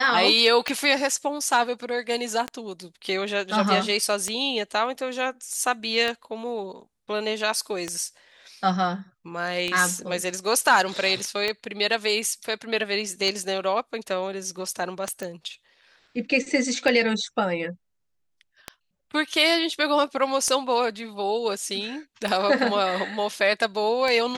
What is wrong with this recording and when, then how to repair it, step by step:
tick 33 1/3 rpm -12 dBFS
15.23 s: pop -18 dBFS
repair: de-click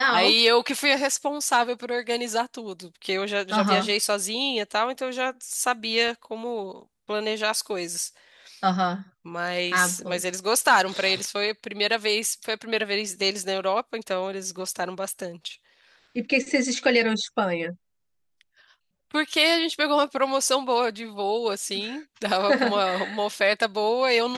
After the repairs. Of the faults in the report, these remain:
nothing left

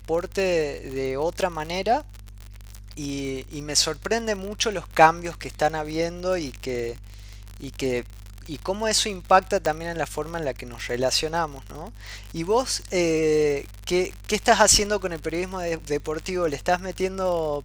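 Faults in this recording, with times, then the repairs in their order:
crackle 57 per s -29 dBFS
9.66 s: pop -11 dBFS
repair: de-click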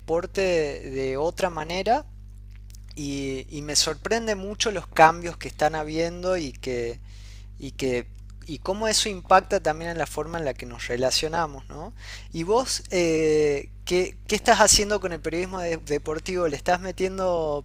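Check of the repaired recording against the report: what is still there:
9.66 s: pop

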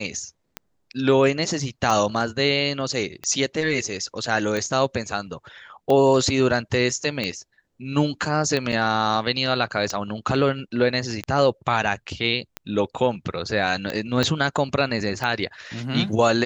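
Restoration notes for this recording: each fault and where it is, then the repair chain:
tick 45 rpm -13 dBFS
8.72 s: dropout 4.9 ms
14.23 s: pop -8 dBFS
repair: de-click; interpolate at 8.72 s, 4.9 ms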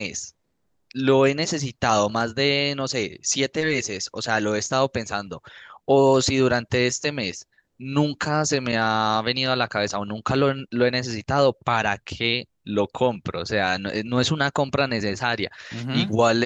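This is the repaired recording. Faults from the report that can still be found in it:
14.23 s: pop

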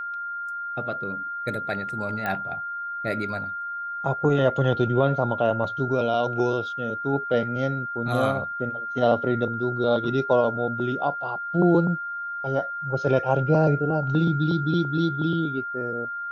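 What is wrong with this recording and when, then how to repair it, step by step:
whine 1.4 kHz -29 dBFS
2.26 s: pop -16 dBFS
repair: de-click; band-stop 1.4 kHz, Q 30

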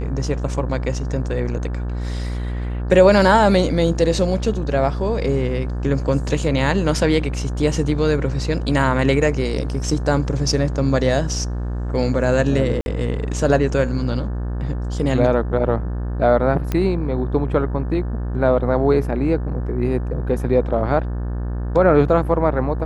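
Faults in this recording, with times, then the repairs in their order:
buzz 60 Hz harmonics 30 -24 dBFS
12.81–12.86 s: dropout 51 ms
16.72 s: pop -9 dBFS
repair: de-click; de-hum 60 Hz, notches 30; interpolate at 12.81 s, 51 ms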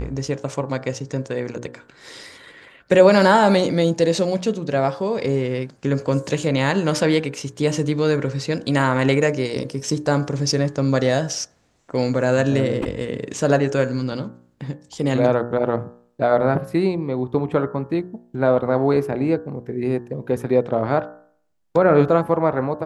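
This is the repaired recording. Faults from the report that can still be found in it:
nothing left

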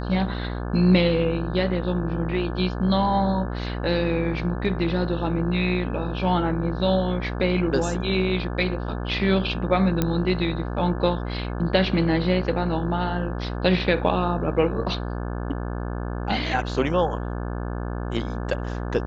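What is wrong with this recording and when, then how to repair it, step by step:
buzz 60 Hz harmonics 29 -29 dBFS
10.02 s: pop -8 dBFS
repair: de-click; de-hum 60 Hz, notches 29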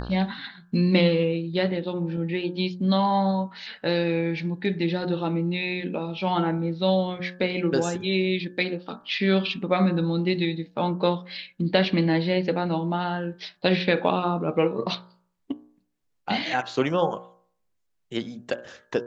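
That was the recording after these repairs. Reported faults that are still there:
nothing left

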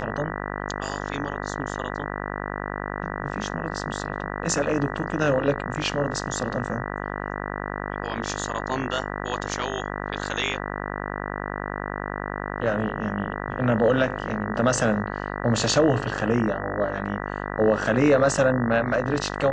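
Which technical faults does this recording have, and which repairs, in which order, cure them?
buzz 50 Hz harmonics 39 -31 dBFS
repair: de-hum 50 Hz, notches 39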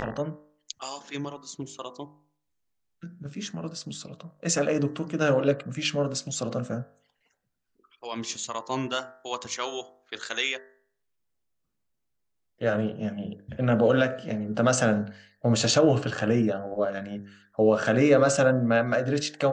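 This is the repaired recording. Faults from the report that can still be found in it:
nothing left

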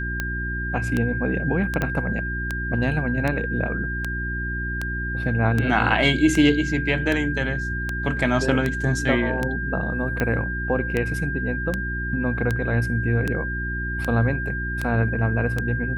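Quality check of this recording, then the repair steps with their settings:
hum 60 Hz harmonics 6 -29 dBFS
tick 78 rpm -11 dBFS
whine 1.6 kHz -28 dBFS
1.82 s: pop -11 dBFS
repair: de-click; de-hum 60 Hz, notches 6; band-stop 1.6 kHz, Q 30

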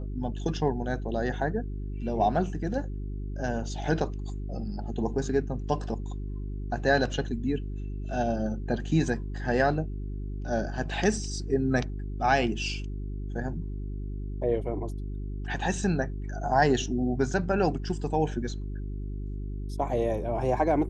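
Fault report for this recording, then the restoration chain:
hum 50 Hz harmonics 8 -34 dBFS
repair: de-hum 50 Hz, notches 8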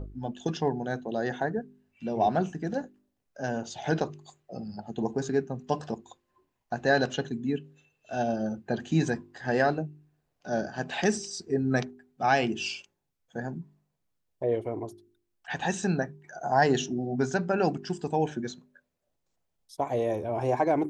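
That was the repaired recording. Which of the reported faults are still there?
nothing left

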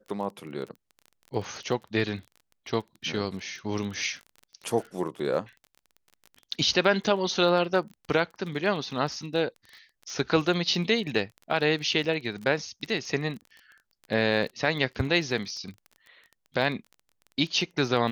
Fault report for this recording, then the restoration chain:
crackle 26 per s -36 dBFS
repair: de-click

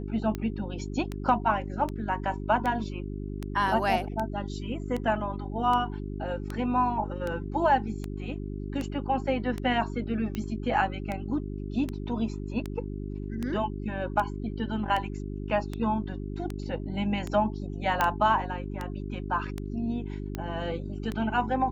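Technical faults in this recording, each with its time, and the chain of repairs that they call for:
hum 50 Hz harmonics 8 -35 dBFS
tick 78 rpm -19 dBFS
18.01 s: pop -11 dBFS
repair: de-click; de-hum 50 Hz, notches 8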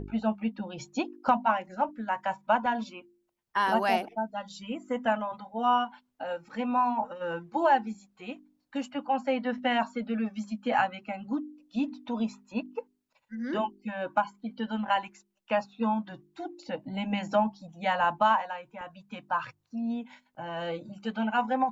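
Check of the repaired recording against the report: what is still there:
18.01 s: pop

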